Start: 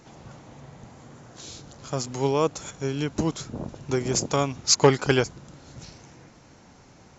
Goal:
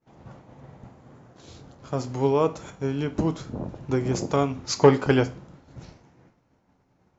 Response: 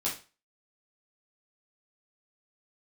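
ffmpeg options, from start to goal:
-filter_complex "[0:a]lowpass=frequency=1500:poles=1,agate=range=-33dB:threshold=-42dB:ratio=3:detection=peak,asplit=2[link_01][link_02];[1:a]atrim=start_sample=2205,asetrate=40572,aresample=44100[link_03];[link_02][link_03]afir=irnorm=-1:irlink=0,volume=-13.5dB[link_04];[link_01][link_04]amix=inputs=2:normalize=0"

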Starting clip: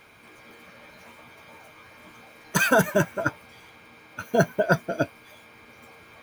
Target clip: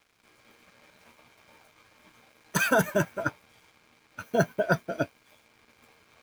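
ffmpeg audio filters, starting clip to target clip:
ffmpeg -i in.wav -af "aeval=exprs='sgn(val(0))*max(abs(val(0))-0.00282,0)':channel_layout=same,volume=-3.5dB" out.wav

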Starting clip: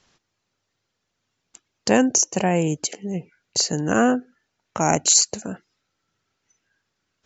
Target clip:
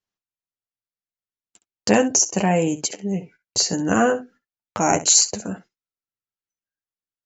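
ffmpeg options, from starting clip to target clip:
ffmpeg -i in.wav -af "agate=range=-29dB:threshold=-46dB:ratio=16:detection=peak,aecho=1:1:10|66:0.562|0.188" out.wav

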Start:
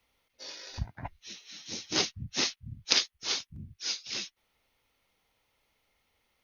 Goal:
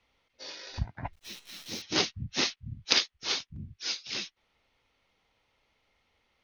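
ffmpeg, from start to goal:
ffmpeg -i in.wav -filter_complex "[0:a]lowpass=5100,asettb=1/sr,asplit=3[link_01][link_02][link_03];[link_01]atrim=end=1.134[link_04];[link_02]atrim=start=1.13:end=1.82,asetpts=PTS-STARTPTS,afade=type=in:duration=0.004:curve=qsin,afade=type=out:start_time=0.686:duration=0.004:curve=qsin,acrusher=bits=9:dc=4:mix=0:aa=0.000001[link_05];[link_03]atrim=start=1.816[link_06];[link_04][link_05]acrossfade=duration=0.004:curve1=hsin:curve2=qsin[link_07];[link_07][link_06]acrossfade=duration=0.004:curve1=qsin:curve2=hsin,volume=2.5dB" out.wav

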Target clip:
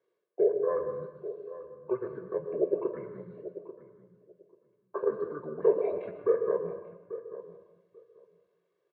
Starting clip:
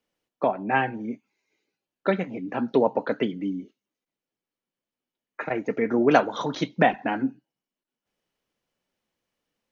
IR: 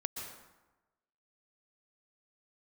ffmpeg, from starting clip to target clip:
-filter_complex "[0:a]acrossover=split=3400[link_01][link_02];[link_02]acompressor=threshold=-56dB:ratio=4:attack=1:release=60[link_03];[link_01][link_03]amix=inputs=2:normalize=0,aemphasis=mode=reproduction:type=bsi,aecho=1:1:1.2:0.84,areverse,acompressor=threshold=-32dB:ratio=5,areverse,highpass=frequency=630:width_type=q:width=4.9,asetrate=26222,aresample=44100,atempo=1.68179,flanger=delay=8.3:depth=7.9:regen=-75:speed=0.45:shape=triangular,asplit=2[link_04][link_05];[link_05]adelay=913,lowpass=frequency=1100:poles=1,volume=-13dB,asplit=2[link_06][link_07];[link_07]adelay=913,lowpass=frequency=1100:poles=1,volume=0.17[link_08];[link_04][link_06][link_08]amix=inputs=3:normalize=0,asplit=2[link_09][link_10];[1:a]atrim=start_sample=2205[link_11];[link_10][link_11]afir=irnorm=-1:irlink=0,volume=1.5dB[link_12];[link_09][link_12]amix=inputs=2:normalize=0,asetrate=48000,aresample=44100,volume=-3dB"

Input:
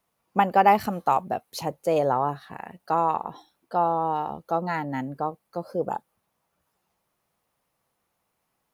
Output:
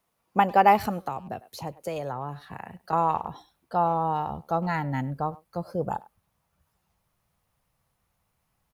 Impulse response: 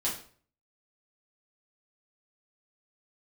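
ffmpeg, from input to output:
-filter_complex "[0:a]asplit=2[link_01][link_02];[link_02]adelay=100,highpass=300,lowpass=3400,asoftclip=type=hard:threshold=-16.5dB,volume=-21dB[link_03];[link_01][link_03]amix=inputs=2:normalize=0,asubboost=boost=5.5:cutoff=130,asettb=1/sr,asplit=3[link_04][link_05][link_06];[link_04]atrim=end=1.054[link_07];[link_05]atrim=start=1.05:end=2.93,asetpts=PTS-STARTPTS,afade=type=in:duration=0.004:curve=qsin,afade=type=out:start_time=1.876:duration=0.004:curve=qsin,acrossover=split=89|440|1200[link_08][link_09][link_10][link_11];[link_08]acompressor=threshold=-58dB:ratio=4[link_12];[link_09]acompressor=threshold=-36dB:ratio=4[link_13];[link_10]acompressor=threshold=-37dB:ratio=4[link_14];[link_11]acompressor=threshold=-42dB:ratio=4[link_15];[link_12][link_13][link_14][link_15]amix=inputs=4:normalize=0[link_16];[link_06]atrim=start=2.926[link_17];[link_07][link_16]acrossfade=duration=0.004:curve1=hsin:curve2=qsin[link_18];[link_18][link_17]acrossfade=duration=0.004:curve1=qsin:curve2=hsin"

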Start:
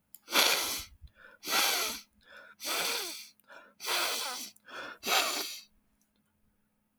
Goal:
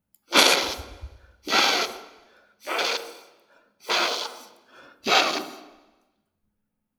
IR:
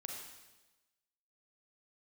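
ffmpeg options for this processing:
-filter_complex "[0:a]afwtdn=0.0178,asplit=2[link_01][link_02];[link_02]tiltshelf=frequency=1100:gain=9.5[link_03];[1:a]atrim=start_sample=2205[link_04];[link_03][link_04]afir=irnorm=-1:irlink=0,volume=-4dB[link_05];[link_01][link_05]amix=inputs=2:normalize=0,volume=7.5dB"

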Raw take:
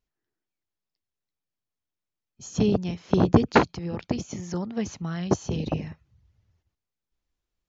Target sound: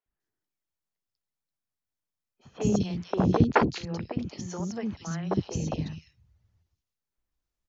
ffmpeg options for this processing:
ffmpeg -i in.wav -filter_complex "[0:a]acrossover=split=360|2900[link_01][link_02][link_03];[link_01]adelay=60[link_04];[link_03]adelay=200[link_05];[link_04][link_02][link_05]amix=inputs=3:normalize=0,volume=-1.5dB" out.wav

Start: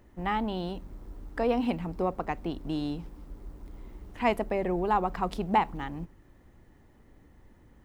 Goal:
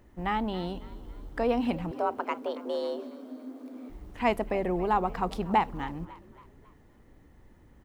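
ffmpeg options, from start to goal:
ffmpeg -i in.wav -filter_complex "[0:a]asettb=1/sr,asplit=3[link_01][link_02][link_03];[link_01]atrim=end=1.914[link_04];[link_02]atrim=start=1.91:end=3.9,asetpts=PTS-STARTPTS,afade=type=in:duration=0.004:curve=qsin,afade=type=out:start_time=1.986:duration=0.004:curve=qsin,afreqshift=220[link_05];[link_03]atrim=start=3.896[link_06];[link_04][link_05]acrossfade=duration=0.004:curve1=hsin:curve2=qsin[link_07];[link_07][link_06]acrossfade=duration=0.004:curve1=qsin:curve2=hsin,asplit=5[link_08][link_09][link_10][link_11][link_12];[link_09]adelay=275,afreqshift=51,volume=-18.5dB[link_13];[link_10]adelay=550,afreqshift=102,volume=-25.4dB[link_14];[link_11]adelay=825,afreqshift=153,volume=-32.4dB[link_15];[link_12]adelay=1100,afreqshift=204,volume=-39.3dB[link_16];[link_08][link_13][link_14][link_15][link_16]amix=inputs=5:normalize=0" out.wav

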